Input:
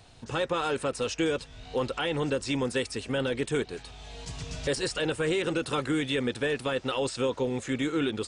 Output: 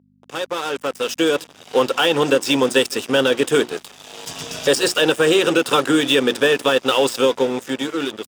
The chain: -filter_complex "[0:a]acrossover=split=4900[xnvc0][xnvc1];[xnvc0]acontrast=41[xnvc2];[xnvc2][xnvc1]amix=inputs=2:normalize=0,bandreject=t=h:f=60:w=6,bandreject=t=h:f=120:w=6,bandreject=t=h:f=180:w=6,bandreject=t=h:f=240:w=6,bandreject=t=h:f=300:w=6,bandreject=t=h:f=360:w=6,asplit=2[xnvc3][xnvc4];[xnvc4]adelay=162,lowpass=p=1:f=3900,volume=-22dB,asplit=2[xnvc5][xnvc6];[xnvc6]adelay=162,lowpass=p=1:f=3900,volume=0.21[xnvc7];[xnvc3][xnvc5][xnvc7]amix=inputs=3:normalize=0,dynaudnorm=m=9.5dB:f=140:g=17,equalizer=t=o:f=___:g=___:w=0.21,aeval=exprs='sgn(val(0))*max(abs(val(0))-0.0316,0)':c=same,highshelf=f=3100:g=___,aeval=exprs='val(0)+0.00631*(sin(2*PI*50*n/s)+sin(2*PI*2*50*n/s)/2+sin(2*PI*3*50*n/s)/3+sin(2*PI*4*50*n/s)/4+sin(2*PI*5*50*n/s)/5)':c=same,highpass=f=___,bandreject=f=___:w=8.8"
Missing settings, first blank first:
2100, -13.5, 6.5, 240, 4200